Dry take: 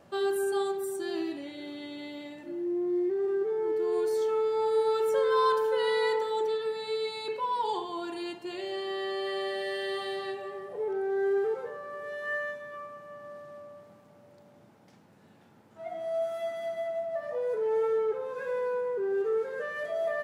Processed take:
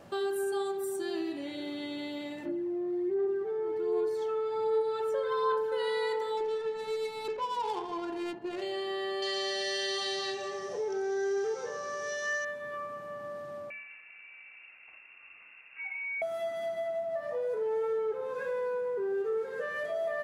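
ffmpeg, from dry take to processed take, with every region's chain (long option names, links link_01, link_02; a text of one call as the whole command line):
ffmpeg -i in.wav -filter_complex "[0:a]asettb=1/sr,asplit=3[link_01][link_02][link_03];[link_01]atrim=end=2.454[link_04];[link_02]atrim=start=2.45:end=5.72,asetpts=PTS-STARTPTS,afade=type=in:duration=0.004:curve=qsin,afade=type=out:start_time=3.266:duration=0.004:curve=qsin,highshelf=frequency=5300:gain=-11.5,aphaser=in_gain=1:out_gain=1:delay=1.7:decay=0.44:speed=1.3:type=sinusoidal[link_05];[link_03]atrim=start=5.716[link_06];[link_04][link_05]acrossfade=duration=0.004:curve1=hsin:curve2=qsin[link_07];[link_07][link_06]acrossfade=duration=0.004:curve1=qsin:curve2=hsin,asettb=1/sr,asplit=3[link_08][link_09][link_10];[link_08]atrim=end=6.374[link_11];[link_09]atrim=start=6.37:end=8.62,asetpts=PTS-STARTPTS,afade=type=in:duration=0.004:curve=qsin,afade=type=out:start_time=2.246:duration=0.004:curve=qsin,aemphasis=mode=production:type=50fm,adynamicsmooth=sensitivity=5.5:basefreq=780[link_12];[link_10]atrim=start=8.616[link_13];[link_11][link_12]acrossfade=duration=0.004:curve1=hsin:curve2=qsin[link_14];[link_14][link_13]acrossfade=duration=0.004:curve1=qsin:curve2=hsin,asettb=1/sr,asplit=3[link_15][link_16][link_17];[link_15]atrim=end=9.224[link_18];[link_16]atrim=start=9.22:end=12.45,asetpts=PTS-STARTPTS,afade=type=in:duration=0.004:curve=qsin,afade=type=out:start_time=3.226:duration=0.004:curve=qsin,lowpass=frequency=5900:width_type=q:width=11,highshelf=frequency=3500:gain=11.5[link_19];[link_17]atrim=start=12.446[link_20];[link_18][link_19]acrossfade=duration=0.004:curve1=hsin:curve2=qsin[link_21];[link_21][link_20]acrossfade=duration=0.004:curve1=qsin:curve2=hsin,asettb=1/sr,asplit=3[link_22][link_23][link_24];[link_22]atrim=end=13.704[link_25];[link_23]atrim=start=13.7:end=16.22,asetpts=PTS-STARTPTS,afade=type=in:duration=0.004:curve=qsin,afade=type=out:start_time=2.516:duration=0.004:curve=qsin,lowpass=frequency=2500:width_type=q:width=0.5098,lowpass=frequency=2500:width_type=q:width=0.6013,lowpass=frequency=2500:width_type=q:width=0.9,lowpass=frequency=2500:width_type=q:width=2.563,afreqshift=-2900,acompressor=threshold=-42dB:ratio=2:attack=3.2:release=140:knee=1:detection=peak[link_26];[link_24]atrim=start=16.216[link_27];[link_25][link_26]acrossfade=duration=0.004:curve1=hsin:curve2=qsin[link_28];[link_28][link_27]acrossfade=duration=0.004:curve1=qsin:curve2=hsin,bandreject=frequency=75.91:width_type=h:width=4,bandreject=frequency=151.82:width_type=h:width=4,bandreject=frequency=227.73:width_type=h:width=4,bandreject=frequency=303.64:width_type=h:width=4,bandreject=frequency=379.55:width_type=h:width=4,bandreject=frequency=455.46:width_type=h:width=4,bandreject=frequency=531.37:width_type=h:width=4,bandreject=frequency=607.28:width_type=h:width=4,bandreject=frequency=683.19:width_type=h:width=4,bandreject=frequency=759.1:width_type=h:width=4,bandreject=frequency=835.01:width_type=h:width=4,bandreject=frequency=910.92:width_type=h:width=4,bandreject=frequency=986.83:width_type=h:width=4,bandreject=frequency=1062.74:width_type=h:width=4,bandreject=frequency=1138.65:width_type=h:width=4,bandreject=frequency=1214.56:width_type=h:width=4,bandreject=frequency=1290.47:width_type=h:width=4,bandreject=frequency=1366.38:width_type=h:width=4,bandreject=frequency=1442.29:width_type=h:width=4,bandreject=frequency=1518.2:width_type=h:width=4,bandreject=frequency=1594.11:width_type=h:width=4,bandreject=frequency=1670.02:width_type=h:width=4,bandreject=frequency=1745.93:width_type=h:width=4,bandreject=frequency=1821.84:width_type=h:width=4,bandreject=frequency=1897.75:width_type=h:width=4,bandreject=frequency=1973.66:width_type=h:width=4,bandreject=frequency=2049.57:width_type=h:width=4,bandreject=frequency=2125.48:width_type=h:width=4,bandreject=frequency=2201.39:width_type=h:width=4,bandreject=frequency=2277.3:width_type=h:width=4,acompressor=threshold=-41dB:ratio=2,volume=5dB" out.wav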